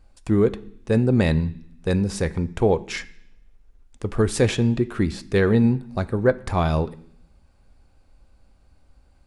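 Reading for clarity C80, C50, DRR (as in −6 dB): 21.5 dB, 19.0 dB, 10.5 dB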